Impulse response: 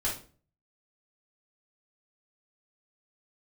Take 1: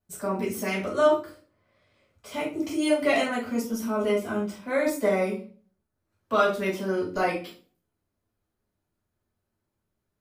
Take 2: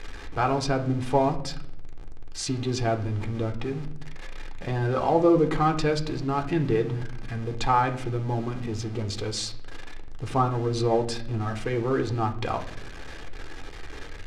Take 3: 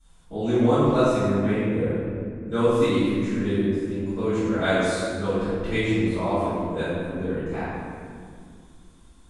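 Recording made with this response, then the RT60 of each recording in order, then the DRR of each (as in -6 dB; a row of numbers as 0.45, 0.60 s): 1; 0.40, 0.70, 2.2 s; -6.5, 5.0, -18.5 dB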